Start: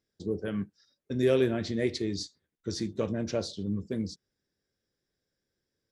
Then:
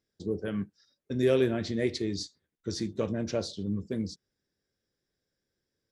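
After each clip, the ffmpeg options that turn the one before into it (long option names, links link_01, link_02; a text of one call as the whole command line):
ffmpeg -i in.wav -af anull out.wav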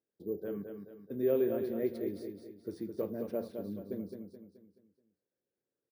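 ffmpeg -i in.wav -af "bandpass=frequency=450:width_type=q:width=0.91:csg=0,acrusher=samples=3:mix=1:aa=0.000001,aecho=1:1:214|428|642|856|1070:0.473|0.203|0.0875|0.0376|0.0162,volume=-4dB" out.wav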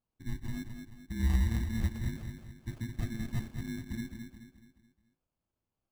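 ffmpeg -i in.wav -af "afftfilt=real='real(if(lt(b,272),68*(eq(floor(b/68),0)*1+eq(floor(b/68),1)*0+eq(floor(b/68),2)*3+eq(floor(b/68),3)*2)+mod(b,68),b),0)':imag='imag(if(lt(b,272),68*(eq(floor(b/68),0)*1+eq(floor(b/68),1)*0+eq(floor(b/68),2)*3+eq(floor(b/68),3)*2)+mod(b,68),b),0)':win_size=2048:overlap=0.75,acrusher=samples=23:mix=1:aa=0.000001,aeval=exprs='0.133*(cos(1*acos(clip(val(0)/0.133,-1,1)))-cos(1*PI/2))+0.00188*(cos(4*acos(clip(val(0)/0.133,-1,1)))-cos(4*PI/2))+0.00133*(cos(7*acos(clip(val(0)/0.133,-1,1)))-cos(7*PI/2))':channel_layout=same,volume=2.5dB" out.wav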